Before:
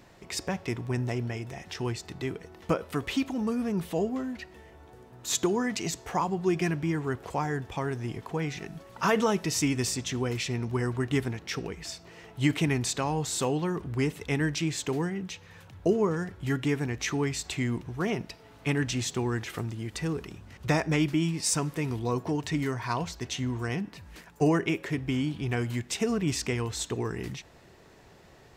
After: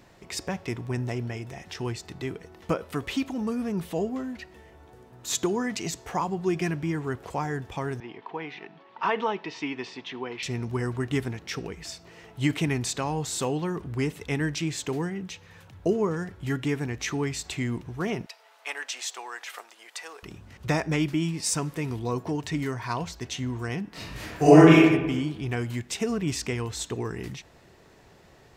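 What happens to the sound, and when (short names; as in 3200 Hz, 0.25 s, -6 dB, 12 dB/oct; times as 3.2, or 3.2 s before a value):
8–10.43 speaker cabinet 350–3600 Hz, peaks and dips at 560 Hz -7 dB, 920 Hz +5 dB, 1400 Hz -4 dB
18.26–20.23 HPF 620 Hz 24 dB/oct
23.89–24.78 reverb throw, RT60 1.1 s, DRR -11.5 dB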